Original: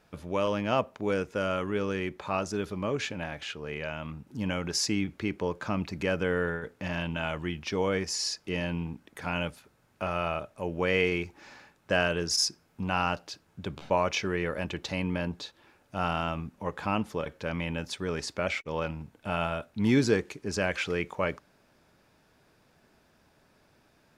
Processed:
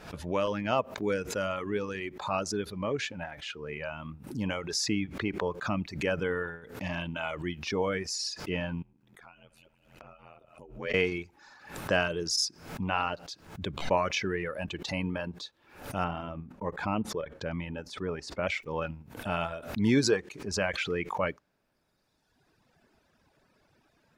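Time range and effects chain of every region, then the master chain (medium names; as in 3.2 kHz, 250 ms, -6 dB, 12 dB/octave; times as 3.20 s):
8.82–10.94 s: multi-head delay 68 ms, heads first and third, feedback 49%, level -20 dB + compression 4:1, threshold -46 dBFS + ring modulator 41 Hz
16.04–18.43 s: gate -49 dBFS, range -19 dB + treble shelf 2.2 kHz -10.5 dB
whole clip: reverb removal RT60 1.8 s; treble shelf 8.9 kHz -6 dB; swell ahead of each attack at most 100 dB/s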